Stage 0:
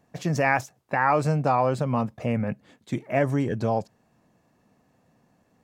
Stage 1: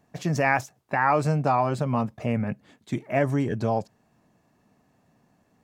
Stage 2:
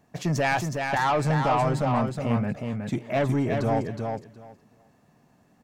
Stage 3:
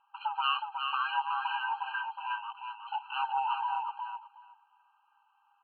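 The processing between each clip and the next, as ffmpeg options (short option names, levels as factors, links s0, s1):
-af "bandreject=f=510:w=12"
-filter_complex "[0:a]asoftclip=type=tanh:threshold=0.106,asplit=2[s0][s1];[s1]aecho=0:1:367|734|1101:0.562|0.09|0.0144[s2];[s0][s2]amix=inputs=2:normalize=0,volume=1.26"
-af "afftfilt=real='real(if(lt(b,1008),b+24*(1-2*mod(floor(b/24),2)),b),0)':imag='imag(if(lt(b,1008),b+24*(1-2*mod(floor(b/24),2)),b),0)':win_size=2048:overlap=0.75,aresample=8000,aresample=44100,afftfilt=real='re*eq(mod(floor(b*sr/1024/800),2),1)':imag='im*eq(mod(floor(b*sr/1024/800),2),1)':win_size=1024:overlap=0.75"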